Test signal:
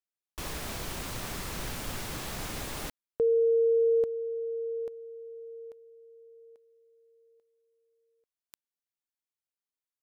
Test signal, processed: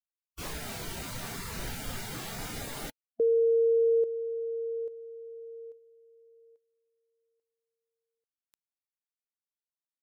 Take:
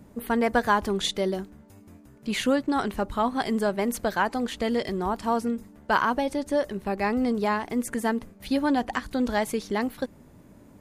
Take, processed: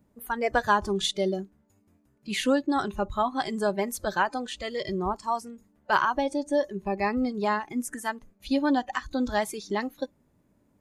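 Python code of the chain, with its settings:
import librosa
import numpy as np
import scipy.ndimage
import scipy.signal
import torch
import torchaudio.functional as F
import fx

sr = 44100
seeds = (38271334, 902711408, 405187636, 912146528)

y = fx.noise_reduce_blind(x, sr, reduce_db=15)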